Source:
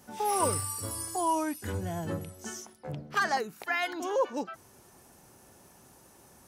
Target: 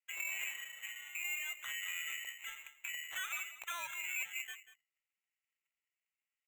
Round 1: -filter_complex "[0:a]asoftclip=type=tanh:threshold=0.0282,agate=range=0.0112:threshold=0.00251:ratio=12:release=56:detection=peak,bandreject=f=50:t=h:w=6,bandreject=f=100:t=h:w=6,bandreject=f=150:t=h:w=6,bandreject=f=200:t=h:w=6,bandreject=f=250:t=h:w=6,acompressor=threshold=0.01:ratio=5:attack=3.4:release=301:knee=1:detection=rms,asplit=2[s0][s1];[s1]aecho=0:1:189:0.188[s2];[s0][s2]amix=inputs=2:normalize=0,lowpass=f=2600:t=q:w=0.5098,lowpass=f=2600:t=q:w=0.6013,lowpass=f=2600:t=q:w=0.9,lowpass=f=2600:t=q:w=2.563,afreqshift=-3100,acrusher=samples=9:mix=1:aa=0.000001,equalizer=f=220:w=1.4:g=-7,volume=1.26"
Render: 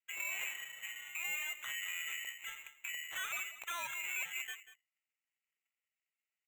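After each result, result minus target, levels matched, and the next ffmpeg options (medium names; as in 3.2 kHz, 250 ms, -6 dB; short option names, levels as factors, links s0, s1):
250 Hz band +6.5 dB; saturation: distortion +7 dB
-filter_complex "[0:a]asoftclip=type=tanh:threshold=0.0282,agate=range=0.0112:threshold=0.00251:ratio=12:release=56:detection=peak,bandreject=f=50:t=h:w=6,bandreject=f=100:t=h:w=6,bandreject=f=150:t=h:w=6,bandreject=f=200:t=h:w=6,bandreject=f=250:t=h:w=6,acompressor=threshold=0.01:ratio=5:attack=3.4:release=301:knee=1:detection=rms,asplit=2[s0][s1];[s1]aecho=0:1:189:0.188[s2];[s0][s2]amix=inputs=2:normalize=0,lowpass=f=2600:t=q:w=0.5098,lowpass=f=2600:t=q:w=0.6013,lowpass=f=2600:t=q:w=0.9,lowpass=f=2600:t=q:w=2.563,afreqshift=-3100,acrusher=samples=9:mix=1:aa=0.000001,equalizer=f=220:w=1.4:g=-17,volume=1.26"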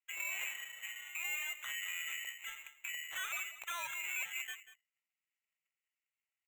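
saturation: distortion +7 dB
-filter_complex "[0:a]asoftclip=type=tanh:threshold=0.0631,agate=range=0.0112:threshold=0.00251:ratio=12:release=56:detection=peak,bandreject=f=50:t=h:w=6,bandreject=f=100:t=h:w=6,bandreject=f=150:t=h:w=6,bandreject=f=200:t=h:w=6,bandreject=f=250:t=h:w=6,acompressor=threshold=0.01:ratio=5:attack=3.4:release=301:knee=1:detection=rms,asplit=2[s0][s1];[s1]aecho=0:1:189:0.188[s2];[s0][s2]amix=inputs=2:normalize=0,lowpass=f=2600:t=q:w=0.5098,lowpass=f=2600:t=q:w=0.6013,lowpass=f=2600:t=q:w=0.9,lowpass=f=2600:t=q:w=2.563,afreqshift=-3100,acrusher=samples=9:mix=1:aa=0.000001,equalizer=f=220:w=1.4:g=-17,volume=1.26"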